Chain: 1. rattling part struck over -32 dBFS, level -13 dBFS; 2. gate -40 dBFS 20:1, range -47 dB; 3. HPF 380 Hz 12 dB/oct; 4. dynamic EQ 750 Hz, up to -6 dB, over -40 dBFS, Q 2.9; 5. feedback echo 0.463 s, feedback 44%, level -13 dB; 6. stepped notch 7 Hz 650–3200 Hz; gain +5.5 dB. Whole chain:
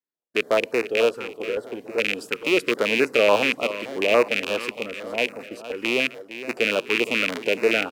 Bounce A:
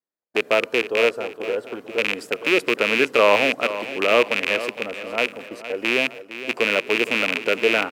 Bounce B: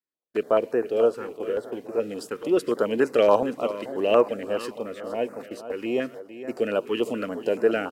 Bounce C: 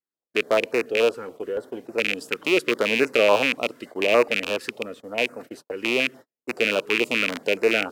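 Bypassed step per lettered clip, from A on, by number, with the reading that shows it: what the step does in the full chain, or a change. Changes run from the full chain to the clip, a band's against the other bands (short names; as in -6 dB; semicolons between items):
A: 6, 1 kHz band +3.0 dB; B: 1, momentary loudness spread change +1 LU; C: 5, momentary loudness spread change +1 LU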